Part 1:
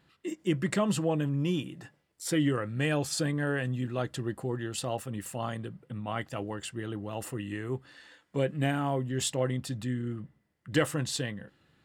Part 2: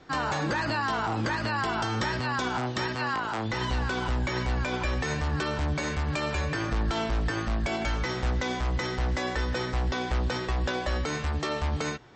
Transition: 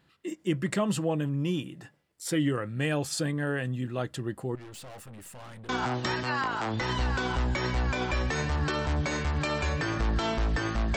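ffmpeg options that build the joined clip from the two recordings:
ffmpeg -i cue0.wav -i cue1.wav -filter_complex "[0:a]asettb=1/sr,asplit=3[link_01][link_02][link_03];[link_01]atrim=end=4.554[link_04];[link_02]atrim=start=4.55:end=5.69,asetpts=PTS-STARTPTS,afade=type=in:duration=0.004:curve=qsin,afade=type=out:start_time=1.136:duration=0.004:curve=qsin,aeval=exprs='(tanh(141*val(0)+0.35)-tanh(0.35))/141':channel_layout=same[link_05];[link_03]atrim=start=5.686[link_06];[link_04][link_05]acrossfade=duration=0.004:curve1=hsin:curve2=qsin[link_07];[link_07][link_06]acrossfade=duration=0.004:curve1=qsin:curve2=hsin,apad=whole_dur=10.96,atrim=end=10.96,atrim=end=5.692[link_08];[1:a]atrim=start=2.408:end=7.68[link_09];[link_08][link_09]acrossfade=duration=0.004:curve1=hsin:curve2=hsin" out.wav

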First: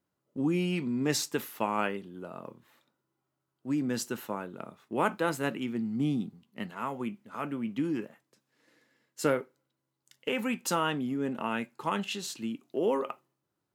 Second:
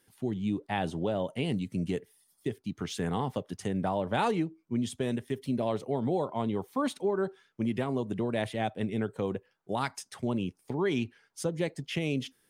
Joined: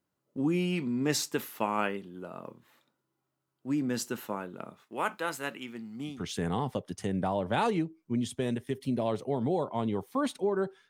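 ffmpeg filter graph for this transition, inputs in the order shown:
ffmpeg -i cue0.wav -i cue1.wav -filter_complex "[0:a]asettb=1/sr,asplit=3[link_01][link_02][link_03];[link_01]atrim=end=4.834[link_04];[link_02]atrim=start=4.83:end=6.26,asetpts=PTS-STARTPTS,afade=type=in:duration=0.004:curve=qsin,afade=type=out:start_time=1.426:duration=0.004:curve=qsin,lowshelf=frequency=490:gain=-12[link_05];[link_03]atrim=start=6.256[link_06];[link_04][link_05]acrossfade=duration=0.004:curve1=hsin:curve2=qsin[link_07];[link_07][link_06]acrossfade=duration=0.004:curve1=qsin:curve2=hsin,apad=whole_dur=10.89,atrim=end=10.89,atrim=end=6.26,asetpts=PTS-STARTPTS[link_08];[1:a]atrim=start=2.67:end=7.5,asetpts=PTS-STARTPTS[link_09];[link_08][link_09]acrossfade=duration=0.2:curve1=tri:curve2=tri" out.wav

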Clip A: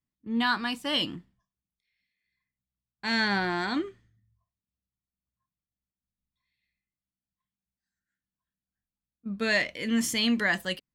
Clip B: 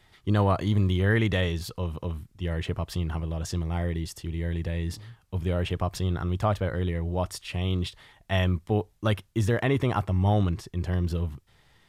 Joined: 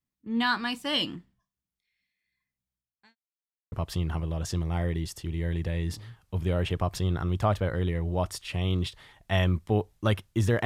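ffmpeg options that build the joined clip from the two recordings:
ffmpeg -i cue0.wav -i cue1.wav -filter_complex "[0:a]apad=whole_dur=10.65,atrim=end=10.65,asplit=2[link_01][link_02];[link_01]atrim=end=3.16,asetpts=PTS-STARTPTS,afade=type=out:start_time=2.71:duration=0.45:curve=qua[link_03];[link_02]atrim=start=3.16:end=3.72,asetpts=PTS-STARTPTS,volume=0[link_04];[1:a]atrim=start=2.72:end=9.65,asetpts=PTS-STARTPTS,afade=type=in:duration=0.004:curve=hsin[link_05];[link_03][link_04][link_05]concat=n=3:v=0:a=1" out.wav

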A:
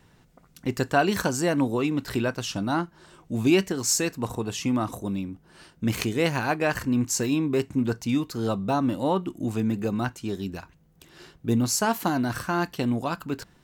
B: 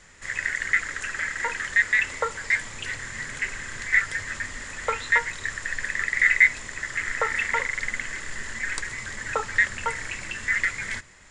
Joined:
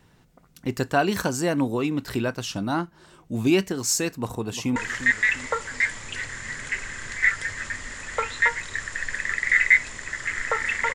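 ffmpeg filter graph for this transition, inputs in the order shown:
ffmpeg -i cue0.wav -i cue1.wav -filter_complex "[0:a]apad=whole_dur=10.94,atrim=end=10.94,atrim=end=4.762[link_01];[1:a]atrim=start=1.458:end=7.64[link_02];[link_01][link_02]acrossfade=duration=0.004:curve1=hsin:curve2=hsin,asplit=2[link_03][link_04];[link_04]afade=type=in:start_time=4.13:duration=0.01,afade=type=out:start_time=4.76:duration=0.01,aecho=0:1:350|700|1050|1400|1750:0.266073|0.119733|0.0538797|0.0242459|0.0109106[link_05];[link_03][link_05]amix=inputs=2:normalize=0" out.wav

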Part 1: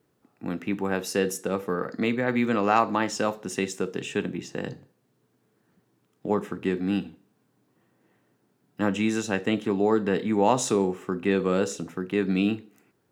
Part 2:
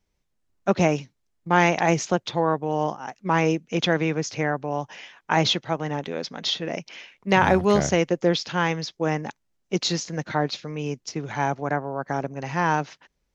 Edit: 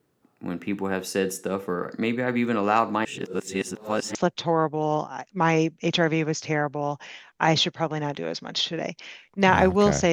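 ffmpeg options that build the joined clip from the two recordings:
ffmpeg -i cue0.wav -i cue1.wav -filter_complex "[0:a]apad=whole_dur=10.12,atrim=end=10.12,asplit=2[link_01][link_02];[link_01]atrim=end=3.052[link_03];[link_02]atrim=start=3.048:end=4.152,asetpts=PTS-STARTPTS,areverse[link_04];[1:a]atrim=start=2.038:end=8.01[link_05];[link_03][link_04]acrossfade=duration=0.004:curve1=hsin:curve2=hsin[link_06];[link_06][link_05]acrossfade=duration=0.004:curve1=hsin:curve2=hsin" out.wav

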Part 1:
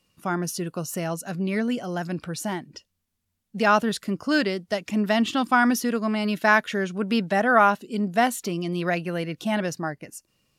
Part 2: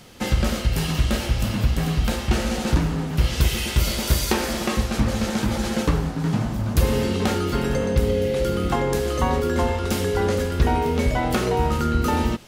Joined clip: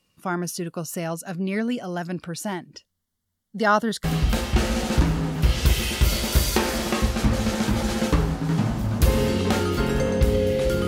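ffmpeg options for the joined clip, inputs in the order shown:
ffmpeg -i cue0.wav -i cue1.wav -filter_complex "[0:a]asettb=1/sr,asplit=3[link_01][link_02][link_03];[link_01]atrim=end=2.854[link_04];[link_02]atrim=start=2.85:end=4.04,asetpts=PTS-STARTPTS,afade=type=in:duration=0.004:curve=qsin,afade=type=out:start_time=1.186:duration=0.004:curve=qsin,asuperstop=centerf=2500:order=4:qfactor=3.7[link_05];[link_03]atrim=start=4.036[link_06];[link_04][link_05]acrossfade=duration=0.004:curve1=hsin:curve2=qsin[link_07];[link_07][link_06]acrossfade=duration=0.004:curve1=qsin:curve2=hsin,apad=whole_dur=10.87,atrim=end=10.87,atrim=end=4.042[link_08];[1:a]atrim=start=1.788:end=8.62[link_09];[link_08][link_09]acrossfade=duration=0.004:curve1=hsin:curve2=hsin" out.wav

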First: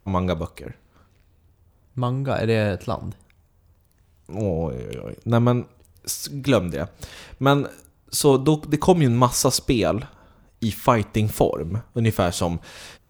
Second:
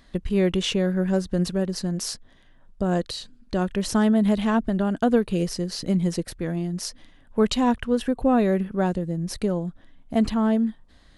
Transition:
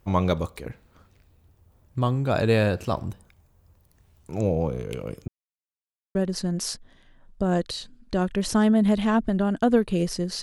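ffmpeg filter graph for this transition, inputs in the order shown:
ffmpeg -i cue0.wav -i cue1.wav -filter_complex "[0:a]apad=whole_dur=10.42,atrim=end=10.42,asplit=2[link_01][link_02];[link_01]atrim=end=5.28,asetpts=PTS-STARTPTS,afade=type=out:start_time=5.276:duration=0.004:curve=hsin[link_03];[link_02]atrim=start=5.28:end=6.15,asetpts=PTS-STARTPTS,volume=0[link_04];[1:a]atrim=start=1.55:end=5.82,asetpts=PTS-STARTPTS,afade=type=in:duration=0.004:curve=hsin[link_05];[link_03][link_04][link_05]concat=n=3:v=0:a=1" out.wav

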